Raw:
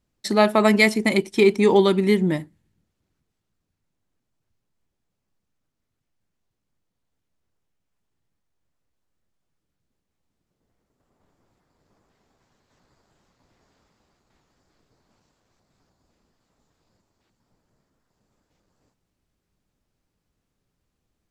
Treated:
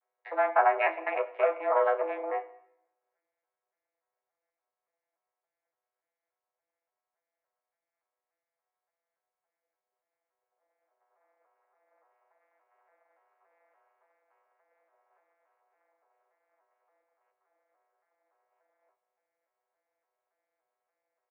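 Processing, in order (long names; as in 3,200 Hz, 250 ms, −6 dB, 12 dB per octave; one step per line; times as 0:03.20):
vocoder with an arpeggio as carrier bare fifth, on A#2, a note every 286 ms
in parallel at −3 dB: downward compressor, threshold −25 dBFS, peak gain reduction 13.5 dB
on the sum: brickwall limiter −9 dBFS, peak gain reduction 5.5 dB
soft clipping −14.5 dBFS, distortion −15 dB
ambience of single reflections 12 ms −3.5 dB, 34 ms −10 dB
on a send at −15.5 dB: convolution reverb RT60 0.75 s, pre-delay 49 ms
on the sum: single-sideband voice off tune +150 Hz 480–2,100 Hz
level +2 dB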